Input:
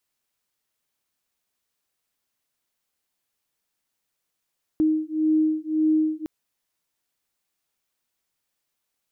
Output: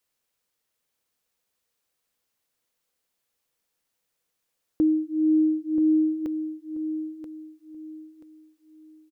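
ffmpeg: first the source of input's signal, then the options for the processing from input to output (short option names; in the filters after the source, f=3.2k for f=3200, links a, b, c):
-f lavfi -i "aevalsrc='0.0794*(sin(2*PI*311*t)+sin(2*PI*312.8*t))':d=1.46:s=44100"
-af "equalizer=f=490:w=7.6:g=8.5,aecho=1:1:982|1964|2946:0.335|0.0971|0.0282"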